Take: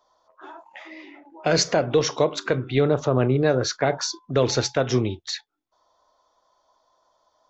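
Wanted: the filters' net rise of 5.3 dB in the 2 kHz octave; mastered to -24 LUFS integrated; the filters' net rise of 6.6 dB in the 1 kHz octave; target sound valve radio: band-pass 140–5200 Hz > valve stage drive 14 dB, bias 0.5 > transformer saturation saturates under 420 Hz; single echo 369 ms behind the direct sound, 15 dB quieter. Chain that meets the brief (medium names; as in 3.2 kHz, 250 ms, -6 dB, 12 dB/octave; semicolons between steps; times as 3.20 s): band-pass 140–5200 Hz; peaking EQ 1 kHz +8.5 dB; peaking EQ 2 kHz +3.5 dB; delay 369 ms -15 dB; valve stage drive 14 dB, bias 0.5; transformer saturation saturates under 420 Hz; trim +3.5 dB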